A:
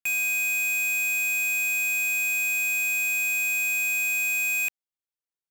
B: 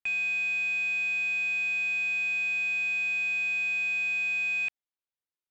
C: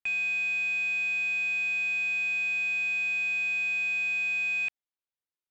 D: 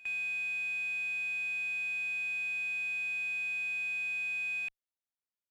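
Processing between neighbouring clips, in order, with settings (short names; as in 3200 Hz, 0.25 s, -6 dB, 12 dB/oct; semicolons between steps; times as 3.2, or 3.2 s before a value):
LPF 4400 Hz 24 dB/oct; gain -2.5 dB
nothing audible
added harmonics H 2 -37 dB, 4 -31 dB, 8 -42 dB, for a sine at -25.5 dBFS; pre-echo 88 ms -18.5 dB; gain -7 dB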